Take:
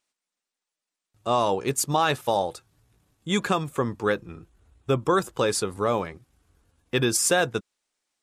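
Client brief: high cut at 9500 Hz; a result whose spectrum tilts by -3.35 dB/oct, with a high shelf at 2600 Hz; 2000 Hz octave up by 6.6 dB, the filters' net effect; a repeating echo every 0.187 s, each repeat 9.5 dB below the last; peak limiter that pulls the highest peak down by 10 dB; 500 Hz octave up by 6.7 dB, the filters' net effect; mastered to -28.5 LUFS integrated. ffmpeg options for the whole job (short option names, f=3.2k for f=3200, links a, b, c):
-af "lowpass=9.5k,equalizer=f=500:t=o:g=7.5,equalizer=f=2k:t=o:g=7,highshelf=f=2.6k:g=3.5,alimiter=limit=-14dB:level=0:latency=1,aecho=1:1:187|374|561|748:0.335|0.111|0.0365|0.012,volume=-3dB"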